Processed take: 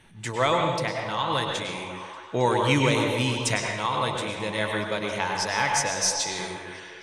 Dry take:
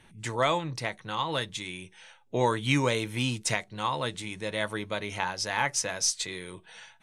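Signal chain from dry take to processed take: delay with a stepping band-pass 0.271 s, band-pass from 440 Hz, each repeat 0.7 oct, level -7.5 dB; reverb RT60 0.90 s, pre-delay 93 ms, DRR 1.5 dB; gain +2 dB

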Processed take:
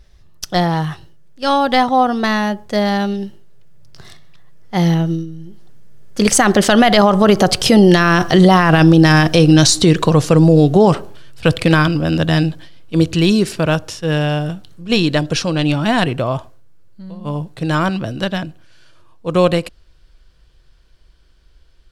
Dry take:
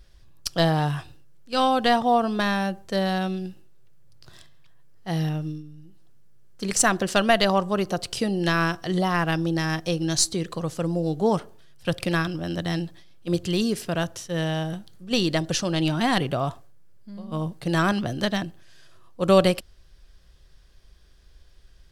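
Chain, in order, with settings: Doppler pass-by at 8.63, 23 m/s, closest 29 m; high shelf 7000 Hz -6.5 dB; maximiser +23 dB; gain -1 dB

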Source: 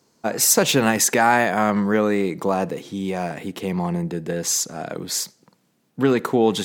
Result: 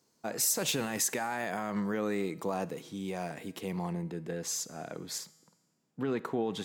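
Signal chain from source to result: limiter -11.5 dBFS, peak gain reduction 9 dB; high shelf 4600 Hz +5.5 dB, from 3.93 s -2.5 dB, from 5.18 s -8.5 dB; resonator 160 Hz, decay 1.3 s, mix 50%; gain -5.5 dB

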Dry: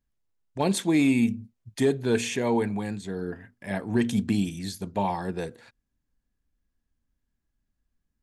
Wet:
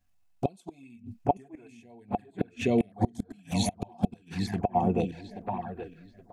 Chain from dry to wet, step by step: in parallel at +1.5 dB: compressor 16:1, threshold -31 dBFS, peak gain reduction 14 dB; on the sum: darkening echo 1.072 s, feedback 33%, low-pass 3100 Hz, level -3 dB; flipped gate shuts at -14 dBFS, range -33 dB; small resonant body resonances 720/2600 Hz, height 15 dB, ringing for 70 ms; envelope flanger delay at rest 10.9 ms, full sweep at -25.5 dBFS; tempo 1.3×; stepped notch 2.4 Hz 400–5700 Hz; gain +3.5 dB

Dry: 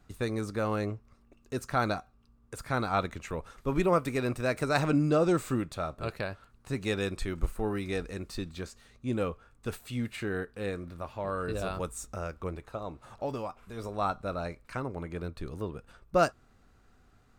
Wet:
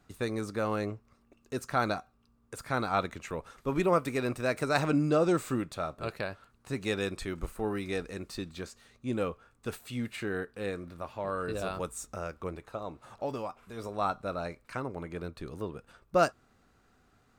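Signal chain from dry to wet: low shelf 76 Hz -11.5 dB

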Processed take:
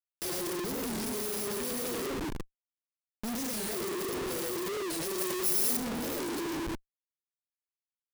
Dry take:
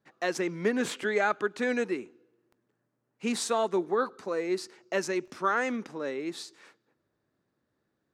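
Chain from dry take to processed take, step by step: FFT order left unsorted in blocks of 32 samples; 1.66–3.32 notches 50/100/150/200/250/300/350/400 Hz; 3.92–4.32 compressor 4:1, threshold -33 dBFS, peak gain reduction 10 dB; band shelf 1400 Hz -13 dB 2.8 oct; notch 880 Hz, Q 12; reverb RT60 1.1 s, pre-delay 83 ms, DRR -5 dB; Schmitt trigger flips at -38.5 dBFS; 5.18–5.77 high shelf 5700 Hz +9 dB; record warp 45 rpm, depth 250 cents; gain -6 dB

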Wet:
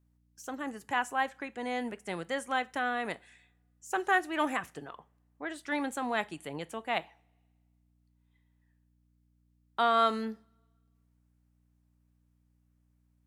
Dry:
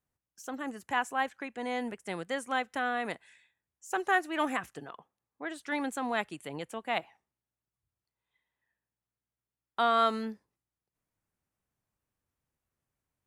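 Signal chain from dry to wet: hum 60 Hz, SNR 33 dB; two-slope reverb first 0.3 s, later 1.7 s, from -27 dB, DRR 15.5 dB

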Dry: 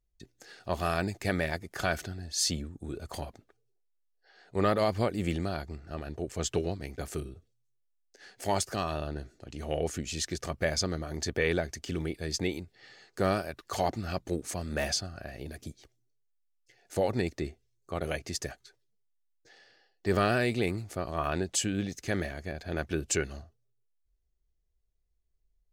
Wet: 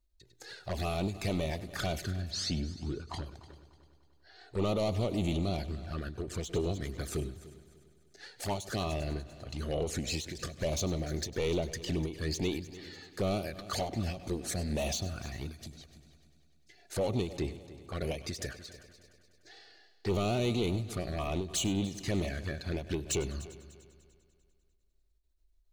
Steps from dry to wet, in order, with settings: bell 4000 Hz +7.5 dB 0.3 oct; in parallel at -1.5 dB: limiter -24 dBFS, peak gain reduction 10.5 dB; on the sum: soft clip -24.5 dBFS, distortion -10 dB; 2.07–3.26 air absorption 94 m; envelope flanger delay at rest 3.3 ms, full sweep at -27.5 dBFS; on a send: multi-head echo 99 ms, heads first and third, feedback 52%, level -17.5 dB; on the sum: ending taper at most 130 dB/s

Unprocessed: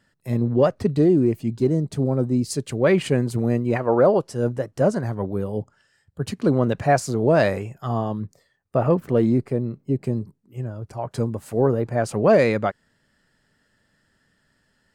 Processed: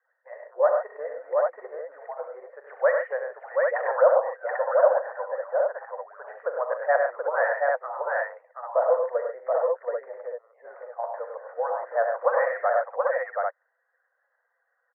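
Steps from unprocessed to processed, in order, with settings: median-filter separation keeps percussive; Chebyshev band-pass 500–1900 Hz, order 5; on a send: tapped delay 41/70/100/137/729/791 ms -12.5/-9.5/-5.5/-11/-3.5/-4 dB

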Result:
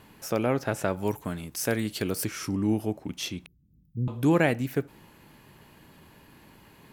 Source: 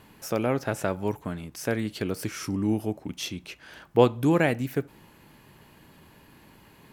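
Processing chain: 0.97–2.25 high shelf 5300 Hz +10 dB; 3.46–4.08 inverse Chebyshev band-stop 990–6400 Hz, stop band 80 dB

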